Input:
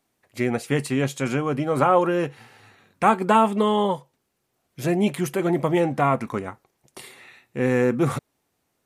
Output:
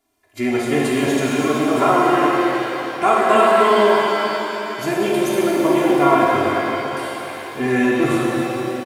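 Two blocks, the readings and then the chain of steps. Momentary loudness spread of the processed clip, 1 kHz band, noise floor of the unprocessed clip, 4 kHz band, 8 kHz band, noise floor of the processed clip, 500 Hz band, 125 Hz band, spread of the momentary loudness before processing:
11 LU, +6.5 dB, -74 dBFS, +9.5 dB, +7.0 dB, -32 dBFS, +6.5 dB, -2.0 dB, 13 LU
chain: comb 2.9 ms, depth 89%; shimmer reverb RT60 3.6 s, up +7 st, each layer -8 dB, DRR -4.5 dB; gain -2 dB

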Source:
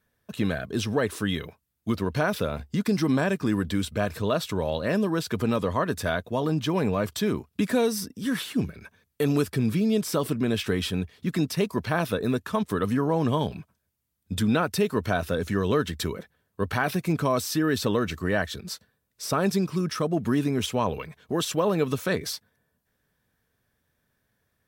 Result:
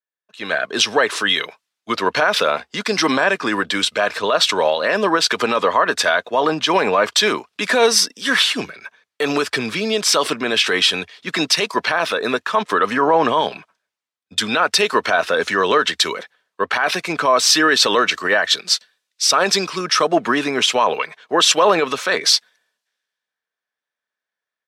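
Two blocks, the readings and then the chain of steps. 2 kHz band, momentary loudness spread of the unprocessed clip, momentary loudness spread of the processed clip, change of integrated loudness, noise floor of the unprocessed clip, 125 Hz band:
+14.5 dB, 7 LU, 7 LU, +9.5 dB, -76 dBFS, -8.5 dB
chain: Bessel high-pass 910 Hz, order 2; AGC gain up to 12 dB; LPF 5500 Hz 12 dB/oct; maximiser +14 dB; three-band expander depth 70%; gain -5 dB

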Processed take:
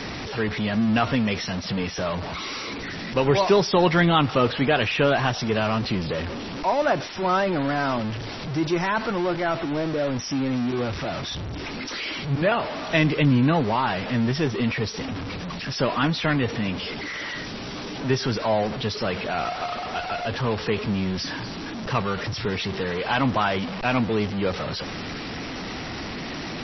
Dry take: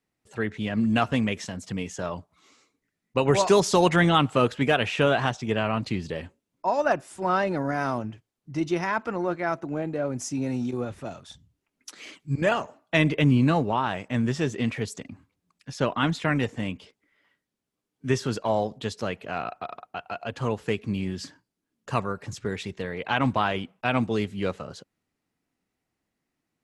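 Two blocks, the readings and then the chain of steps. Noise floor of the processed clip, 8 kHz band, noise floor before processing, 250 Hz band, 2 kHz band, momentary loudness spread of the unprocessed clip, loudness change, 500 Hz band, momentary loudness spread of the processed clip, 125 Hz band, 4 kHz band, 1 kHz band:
-33 dBFS, -1.0 dB, -83 dBFS, +2.5 dB, +3.0 dB, 16 LU, +1.5 dB, +2.5 dB, 12 LU, +2.5 dB, +5.5 dB, +2.5 dB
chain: zero-crossing step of -25 dBFS; MP3 24 kbps 22050 Hz

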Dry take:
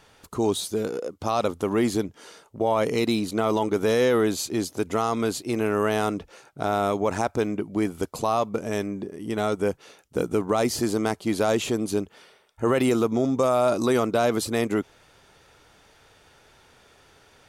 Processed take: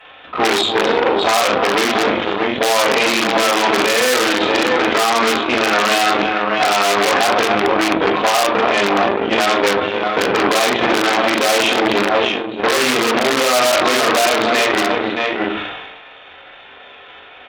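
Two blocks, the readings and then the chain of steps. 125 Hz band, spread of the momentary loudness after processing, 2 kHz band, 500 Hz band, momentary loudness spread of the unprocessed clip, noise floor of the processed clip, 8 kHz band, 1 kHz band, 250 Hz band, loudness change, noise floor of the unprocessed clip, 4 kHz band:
-2.0 dB, 5 LU, +19.0 dB, +7.5 dB, 8 LU, -40 dBFS, +12.0 dB, +13.5 dB, +5.0 dB, +10.0 dB, -57 dBFS, +18.5 dB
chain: doubler 40 ms -5 dB; on a send: tapped delay 0.279/0.624 s -15/-11.5 dB; on the sum: downsampling 8000 Hz; in parallel at 0 dB: compressor 4:1, threshold -29 dBFS, peak gain reduction 12.5 dB; on the sum: shoebox room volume 140 m³, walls furnished, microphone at 5.3 m; added harmonics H 4 -12 dB, 5 -12 dB, 7 -14 dB, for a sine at -1 dBFS; HPF 1400 Hz 6 dB/oct; maximiser +7 dB; sustainer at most 38 dB/s; gain -3 dB

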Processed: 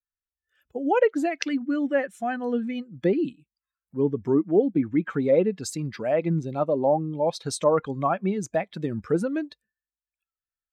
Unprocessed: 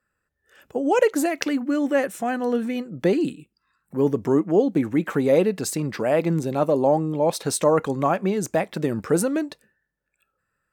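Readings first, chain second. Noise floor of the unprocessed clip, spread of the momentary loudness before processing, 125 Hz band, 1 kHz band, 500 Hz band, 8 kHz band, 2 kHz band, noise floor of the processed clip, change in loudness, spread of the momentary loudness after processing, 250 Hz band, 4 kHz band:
-78 dBFS, 7 LU, -3.0 dB, -2.5 dB, -2.5 dB, -7.5 dB, -3.5 dB, under -85 dBFS, -3.0 dB, 10 LU, -3.0 dB, -4.0 dB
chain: per-bin expansion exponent 1.5; treble ducked by the level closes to 2400 Hz, closed at -17 dBFS

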